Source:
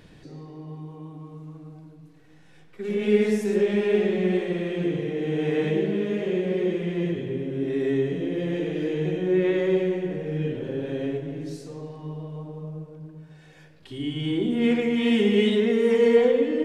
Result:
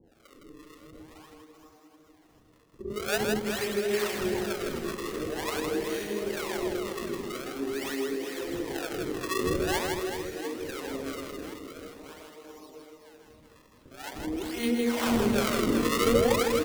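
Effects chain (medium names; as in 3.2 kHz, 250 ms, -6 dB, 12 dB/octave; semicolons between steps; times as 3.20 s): local Wiener filter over 9 samples; elliptic high-pass 220 Hz, stop band 40 dB; tilt shelf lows -7.5 dB, about 1.1 kHz; decimation with a swept rate 33×, swing 160% 0.46 Hz; harmonic tremolo 2.1 Hz, depth 100%, crossover 570 Hz; on a send: reverse bouncing-ball echo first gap 160 ms, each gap 1.4×, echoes 5; on the sum: endings held to a fixed fall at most 170 dB/s; trim +3 dB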